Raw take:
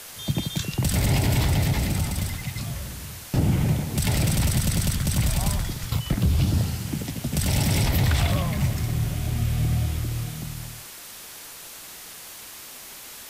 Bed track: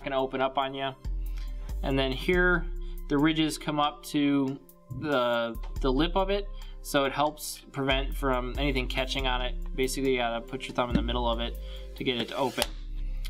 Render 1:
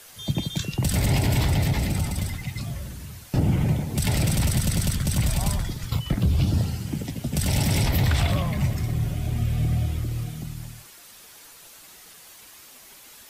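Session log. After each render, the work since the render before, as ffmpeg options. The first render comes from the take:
-af "afftdn=nr=8:nf=-41"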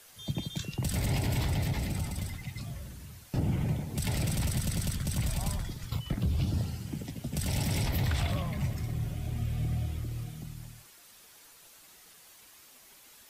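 -af "volume=0.398"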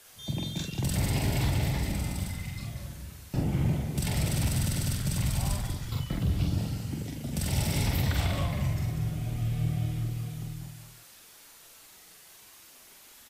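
-filter_complex "[0:a]asplit=2[s0][s1];[s1]adelay=45,volume=0.708[s2];[s0][s2]amix=inputs=2:normalize=0,asplit=2[s3][s4];[s4]aecho=0:1:192:0.398[s5];[s3][s5]amix=inputs=2:normalize=0"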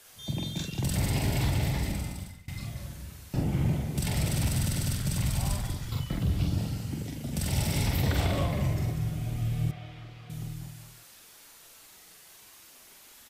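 -filter_complex "[0:a]asettb=1/sr,asplit=3[s0][s1][s2];[s0]atrim=end=8.034[s3];[s1]atrim=start=8.03:end=8.93,asetpts=PTS-STARTPTS,afade=t=in:d=0.004:c=qsin,afade=t=out:st=0.896:d=0.004:c=qsin,equalizer=f=410:w=0.98:g=7.5[s4];[s2]atrim=start=8.926[s5];[s3][s4]acrossfade=d=0.004:c1=hsin:c2=qsin[s6];[s6][s5]acrossfade=d=0.004:c1=qsin:c2=hsin,asettb=1/sr,asplit=3[s7][s8][s9];[s7]atrim=end=9.714[s10];[s8]atrim=start=9.71:end=10.3,asetpts=PTS-STARTPTS,afade=t=in:d=0.004:c=qsin,afade=t=out:st=0.586:d=0.004:c=qsin,acrossover=split=500 4400:gain=0.2 1 0.0631[s11][s12][s13];[s11][s12][s13]amix=inputs=3:normalize=0[s14];[s9]atrim=start=10.296[s15];[s10][s14]acrossfade=d=0.004:c1=hsin:c2=qsin[s16];[s16][s15]acrossfade=d=0.004:c1=qsin:c2=hsin,asplit=2[s17][s18];[s17]atrim=end=2.48,asetpts=PTS-STARTPTS,afade=t=out:st=1.87:d=0.61:silence=0.0749894[s19];[s18]atrim=start=2.48,asetpts=PTS-STARTPTS,afade=t=in:d=0.004:c=hsin:silence=0.0749894[s20];[s19][s20]concat=n=2:v=0:a=1"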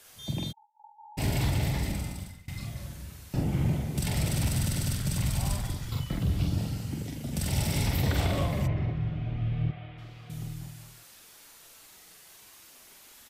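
-filter_complex "[0:a]asplit=3[s0][s1][s2];[s0]afade=t=out:st=0.51:d=0.02[s3];[s1]asuperpass=centerf=870:order=20:qfactor=7.7,afade=t=in:st=0.51:d=0.02,afade=t=out:st=1.17:d=0.02[s4];[s2]afade=t=in:st=1.17:d=0.02[s5];[s3][s4][s5]amix=inputs=3:normalize=0,asplit=3[s6][s7][s8];[s6]afade=t=out:st=8.66:d=0.02[s9];[s7]lowpass=f=3200:w=0.5412,lowpass=f=3200:w=1.3066,afade=t=in:st=8.66:d=0.02,afade=t=out:st=9.97:d=0.02[s10];[s8]afade=t=in:st=9.97:d=0.02[s11];[s9][s10][s11]amix=inputs=3:normalize=0"

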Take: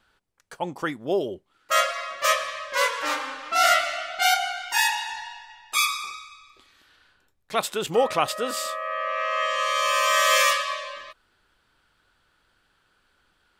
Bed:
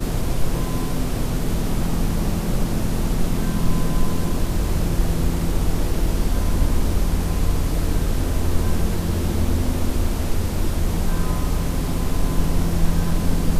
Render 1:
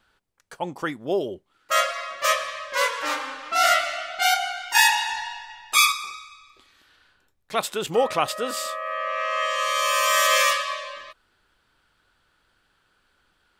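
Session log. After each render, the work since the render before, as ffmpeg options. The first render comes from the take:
-filter_complex "[0:a]asettb=1/sr,asplit=3[s0][s1][s2];[s0]atrim=end=8.864[s3];[s1]atrim=start=8.86:end=10.27,asetpts=PTS-STARTPTS,afade=t=in:d=0.004:c=qsin,afade=t=out:st=1.406:d=0.004:c=qsin,equalizer=f=13000:w=0.5:g=7[s4];[s2]atrim=start=10.266[s5];[s3][s4]acrossfade=d=0.004:c1=hsin:c2=qsin[s6];[s6][s5]acrossfade=d=0.004:c1=qsin:c2=hsin,asplit=3[s7][s8][s9];[s7]atrim=end=4.752[s10];[s8]atrim=start=4.748:end=5.922,asetpts=PTS-STARTPTS,volume=1.78[s11];[s9]atrim=start=5.918[s12];[s10][s11]acrossfade=d=0.004:c1=hsin:c2=hsin[s13];[s13][s12]acrossfade=d=0.004:c1=hsin:c2=hsin"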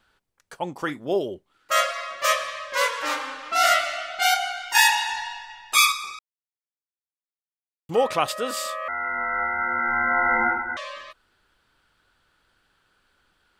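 -filter_complex "[0:a]asettb=1/sr,asplit=3[s0][s1][s2];[s0]atrim=end=0.764[s3];[s1]atrim=start=0.76:end=1.18,asetpts=PTS-STARTPTS,afade=t=in:d=0.004:c=qsin,afade=t=out:st=0.416:d=0.004:c=qsin,asplit=2[s4][s5];[s5]adelay=40,volume=0.224[s6];[s4][s6]amix=inputs=2:normalize=0,atrim=end_sample=18522[s7];[s2]atrim=start=1.176[s8];[s3][s7]acrossfade=d=0.004:c1=hsin:c2=qsin[s9];[s9][s8]acrossfade=d=0.004:c1=qsin:c2=hsin,asettb=1/sr,asplit=3[s10][s11][s12];[s10]atrim=end=8.884[s13];[s11]atrim=start=8.88:end=10.77,asetpts=PTS-STARTPTS,afade=t=in:d=0.004:c=qsin,afade=t=out:st=1.886:d=0.004:c=qsin,lowpass=f=2200:t=q:w=0.5098,lowpass=f=2200:t=q:w=0.6013,lowpass=f=2200:t=q:w=0.9,lowpass=f=2200:t=q:w=2.563,afreqshift=-2600[s14];[s12]atrim=start=10.766[s15];[s13][s14]acrossfade=d=0.004:c1=hsin:c2=qsin[s16];[s16][s15]acrossfade=d=0.004:c1=qsin:c2=hsin,asplit=3[s17][s18][s19];[s17]atrim=end=6.19,asetpts=PTS-STARTPTS,afade=t=out:st=6.186:d=0.004:c=hsin[s20];[s18]atrim=start=6.19:end=7.89,asetpts=PTS-STARTPTS,volume=0[s21];[s19]atrim=start=7.89,asetpts=PTS-STARTPTS,afade=t=in:d=0.004:c=hsin[s22];[s20][s21][s22]concat=n=3:v=0:a=1"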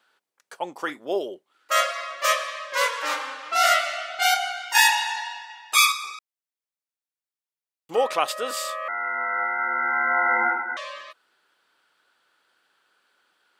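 -af "highpass=380"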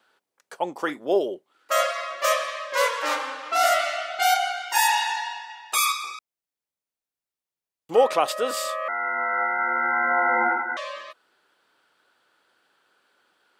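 -filter_complex "[0:a]acrossover=split=880|6900[s0][s1][s2];[s0]acontrast=24[s3];[s1]alimiter=limit=0.133:level=0:latency=1:release=20[s4];[s3][s4][s2]amix=inputs=3:normalize=0"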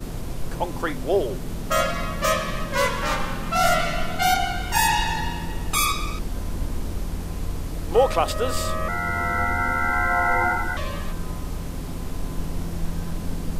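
-filter_complex "[1:a]volume=0.376[s0];[0:a][s0]amix=inputs=2:normalize=0"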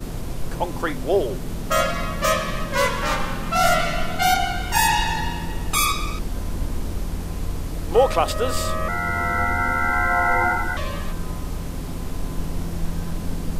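-af "volume=1.19"

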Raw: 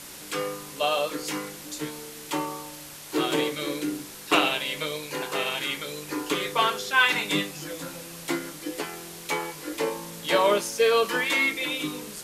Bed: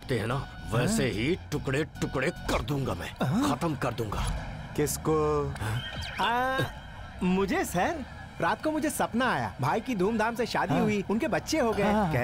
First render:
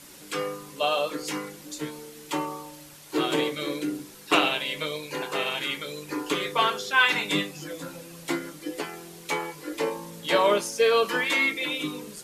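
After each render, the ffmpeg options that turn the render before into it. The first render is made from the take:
-af "afftdn=nr=7:nf=-42"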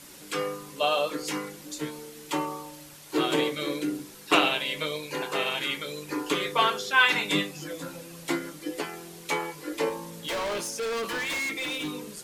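-filter_complex "[0:a]asettb=1/sr,asplit=3[s0][s1][s2];[s0]atrim=end=9.894[s3];[s1]atrim=start=9.89:end=11.89,asetpts=PTS-STARTPTS,afade=t=in:d=0.004:c=qsin,afade=t=out:st=1.996:d=0.004:c=qsin,volume=26.6,asoftclip=hard,volume=0.0376[s4];[s2]atrim=start=11.886[s5];[s3][s4]acrossfade=d=0.004:c1=hsin:c2=qsin[s6];[s6][s5]acrossfade=d=0.004:c1=qsin:c2=hsin"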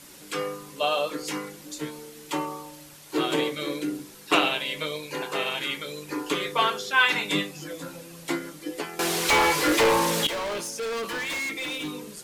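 -filter_complex "[0:a]asettb=1/sr,asplit=3[s0][s1][s2];[s0]atrim=end=8.994[s3];[s1]atrim=start=8.99:end=10.27,asetpts=PTS-STARTPTS,afade=t=in:d=0.004:c=qsin,afade=t=out:st=1.276:d=0.004:c=qsin,asplit=2[s4][s5];[s5]highpass=f=720:p=1,volume=39.8,asoftclip=type=tanh:threshold=0.237[s6];[s4][s6]amix=inputs=2:normalize=0,lowpass=f=5200:p=1,volume=0.501[s7];[s2]atrim=start=10.266[s8];[s3][s7]acrossfade=d=0.004:c1=hsin:c2=qsin[s9];[s9][s8]acrossfade=d=0.004:c1=qsin:c2=hsin"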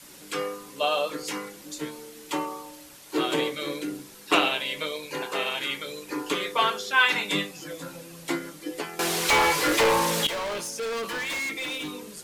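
-af "bandreject=f=50:t=h:w=6,bandreject=f=100:t=h:w=6,bandreject=f=150:t=h:w=6,adynamicequalizer=threshold=0.00794:dfrequency=310:dqfactor=2:tfrequency=310:tqfactor=2:attack=5:release=100:ratio=0.375:range=2:mode=cutabove:tftype=bell"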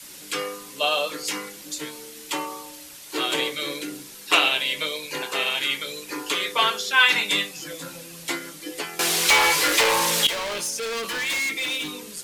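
-filter_complex "[0:a]acrossover=split=430|1900[s0][s1][s2];[s0]alimiter=level_in=1.88:limit=0.0631:level=0:latency=1:release=203,volume=0.531[s3];[s2]acontrast=71[s4];[s3][s1][s4]amix=inputs=3:normalize=0"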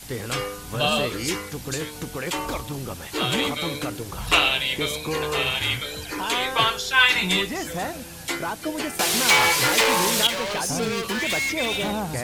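-filter_complex "[1:a]volume=0.75[s0];[0:a][s0]amix=inputs=2:normalize=0"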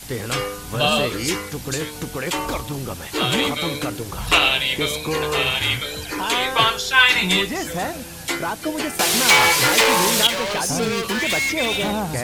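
-af "volume=1.5,alimiter=limit=0.794:level=0:latency=1"

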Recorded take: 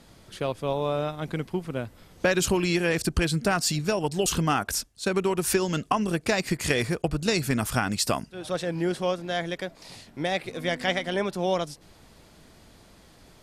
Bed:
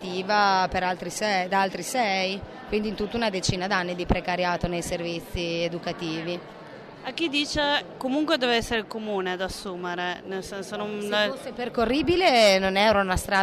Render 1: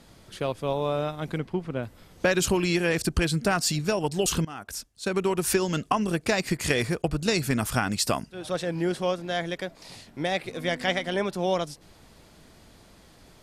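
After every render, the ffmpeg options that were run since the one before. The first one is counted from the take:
-filter_complex "[0:a]asettb=1/sr,asplit=3[s0][s1][s2];[s0]atrim=end=1.384[s3];[s1]atrim=start=1.38:end=1.83,asetpts=PTS-STARTPTS,afade=t=in:d=0.004:c=qsin,afade=t=out:st=0.446:d=0.004:c=qsin,aemphasis=mode=reproduction:type=50fm[s4];[s2]atrim=start=1.826[s5];[s3][s4]acrossfade=d=0.004:c1=hsin:c2=qsin[s6];[s6][s5]acrossfade=d=0.004:c1=qsin:c2=hsin,asplit=2[s7][s8];[s7]atrim=end=4.45,asetpts=PTS-STARTPTS,afade=t=out:st=4.446:d=0.004:c=hsin:silence=0.0891251[s9];[s8]atrim=start=4.45,asetpts=PTS-STARTPTS,afade=t=in:d=0.82:silence=0.0891251[s10];[s9][s10]concat=n=2:v=0:a=1"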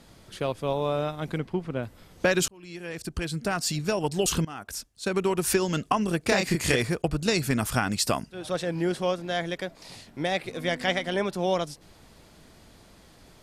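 -filter_complex "[0:a]asettb=1/sr,asplit=3[s0][s1][s2];[s0]atrim=end=6.244[s3];[s1]atrim=start=6.24:end=6.76,asetpts=PTS-STARTPTS,afade=t=in:d=0.004:c=qsin,afade=t=out:st=0.516:d=0.004:c=qsin,asplit=2[s4][s5];[s5]adelay=30,volume=0.708[s6];[s4][s6]amix=inputs=2:normalize=0,atrim=end_sample=22932[s7];[s2]atrim=start=6.756[s8];[s3][s7]acrossfade=d=0.004:c1=hsin:c2=qsin[s9];[s9][s8]acrossfade=d=0.004:c1=qsin:c2=hsin,asplit=2[s10][s11];[s10]atrim=end=2.48,asetpts=PTS-STARTPTS,afade=t=out:st=2.476:d=0.004:c=hsin[s12];[s11]atrim=start=2.48,asetpts=PTS-STARTPTS,afade=t=in:d=1.61[s13];[s12][s13]concat=n=2:v=0:a=1"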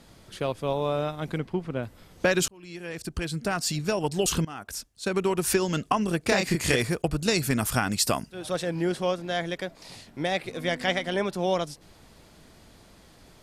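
-filter_complex "[0:a]asettb=1/sr,asplit=3[s0][s1][s2];[s0]atrim=end=6.724[s3];[s1]atrim=start=6.72:end=8.7,asetpts=PTS-STARTPTS,afade=t=in:d=0.004:c=qsin,afade=t=out:st=1.976:d=0.004:c=qsin,highshelf=f=9000:g=6.5[s4];[s2]atrim=start=8.696[s5];[s3][s4]acrossfade=d=0.004:c1=hsin:c2=qsin[s6];[s6][s5]acrossfade=d=0.004:c1=qsin:c2=hsin"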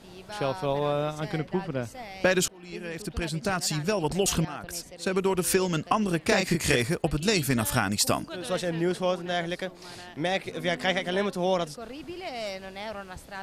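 -filter_complex "[1:a]volume=0.141[s0];[0:a][s0]amix=inputs=2:normalize=0"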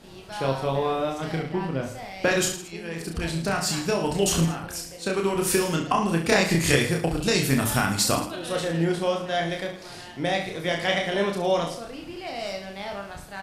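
-filter_complex "[0:a]asplit=2[s0][s1];[s1]adelay=37,volume=0.266[s2];[s0][s2]amix=inputs=2:normalize=0,aecho=1:1:30|66|109.2|161|223.2:0.631|0.398|0.251|0.158|0.1"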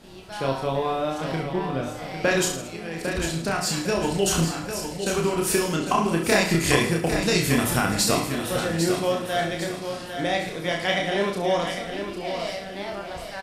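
-filter_complex "[0:a]asplit=2[s0][s1];[s1]adelay=33,volume=0.251[s2];[s0][s2]amix=inputs=2:normalize=0,aecho=1:1:802|1604|2406|3208:0.398|0.155|0.0606|0.0236"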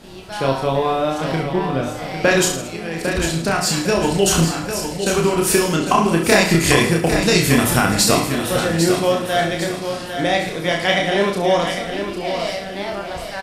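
-af "volume=2.11,alimiter=limit=0.891:level=0:latency=1"

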